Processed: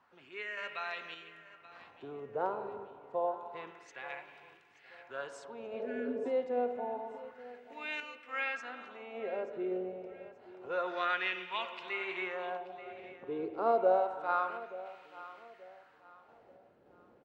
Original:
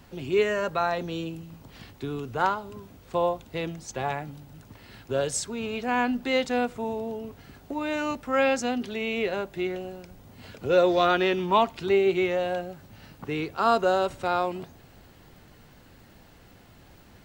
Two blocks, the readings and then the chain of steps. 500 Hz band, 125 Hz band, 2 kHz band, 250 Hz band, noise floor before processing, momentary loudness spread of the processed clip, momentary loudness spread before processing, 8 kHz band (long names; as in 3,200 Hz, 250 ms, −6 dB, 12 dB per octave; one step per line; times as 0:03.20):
−10.0 dB, below −20 dB, −7.0 dB, −14.5 dB, −53 dBFS, 18 LU, 18 LU, below −25 dB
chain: spring reverb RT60 2.3 s, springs 43/49 ms, chirp 55 ms, DRR 8 dB
healed spectral selection 0:05.80–0:06.23, 330–1,300 Hz before
sample-and-hold tremolo
LFO wah 0.28 Hz 460–2,500 Hz, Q 2.2
repeating echo 881 ms, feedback 33%, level −17 dB